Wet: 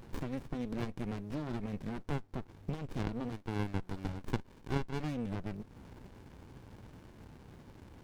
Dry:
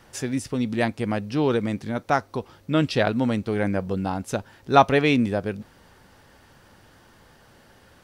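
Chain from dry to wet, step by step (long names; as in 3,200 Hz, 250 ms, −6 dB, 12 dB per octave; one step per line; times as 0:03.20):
0:03.32–0:05.00: high-pass filter 770 Hz 12 dB per octave
downward compressor 5 to 1, threshold −37 dBFS, peak gain reduction 22 dB
windowed peak hold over 65 samples
level +3.5 dB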